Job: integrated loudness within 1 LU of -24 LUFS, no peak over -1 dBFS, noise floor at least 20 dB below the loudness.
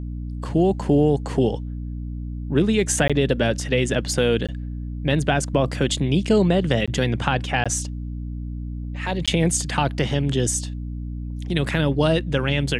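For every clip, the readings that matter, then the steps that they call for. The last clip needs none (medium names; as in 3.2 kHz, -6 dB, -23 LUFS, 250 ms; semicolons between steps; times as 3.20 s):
dropouts 5; longest dropout 16 ms; hum 60 Hz; highest harmonic 300 Hz; hum level -27 dBFS; loudness -22.5 LUFS; peak level -2.0 dBFS; loudness target -24.0 LUFS
-> interpolate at 3.08/4.47/6.86/7.64/9.26 s, 16 ms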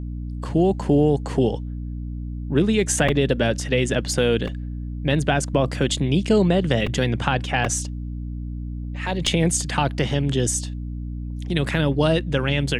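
dropouts 0; hum 60 Hz; highest harmonic 300 Hz; hum level -27 dBFS
-> de-hum 60 Hz, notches 5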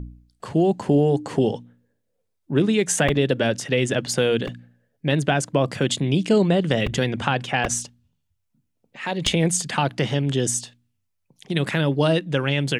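hum not found; loudness -22.0 LUFS; peak level -2.0 dBFS; loudness target -24.0 LUFS
-> trim -2 dB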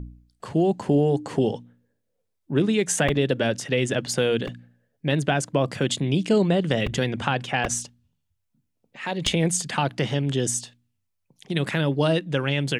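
loudness -24.0 LUFS; peak level -4.0 dBFS; noise floor -76 dBFS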